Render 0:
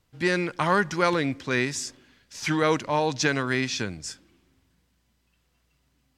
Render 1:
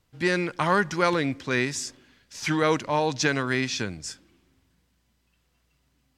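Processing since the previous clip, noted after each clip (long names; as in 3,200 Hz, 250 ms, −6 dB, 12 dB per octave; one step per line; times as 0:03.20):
no processing that can be heard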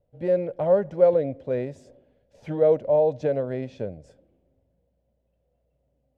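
drawn EQ curve 120 Hz 0 dB, 350 Hz −4 dB, 560 Hz +15 dB, 1,100 Hz −17 dB, 3,300 Hz −19 dB, 5,400 Hz −29 dB, 9,400 Hz −25 dB
level −2 dB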